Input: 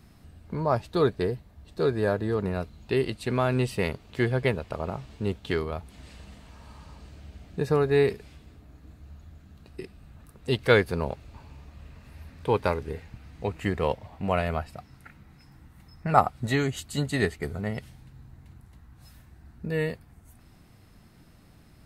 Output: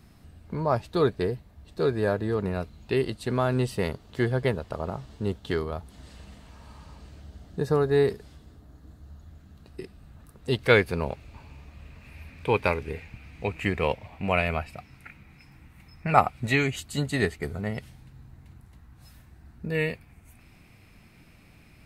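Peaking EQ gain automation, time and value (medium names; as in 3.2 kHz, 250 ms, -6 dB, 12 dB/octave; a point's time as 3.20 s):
peaking EQ 2.4 kHz 0.4 oct
+0.5 dB
from 3.02 s -7.5 dB
from 6.16 s -1.5 dB
from 7.22 s -10.5 dB
from 9.27 s -3.5 dB
from 10.66 s +6.5 dB
from 12.02 s +13 dB
from 16.76 s +2 dB
from 19.75 s +13.5 dB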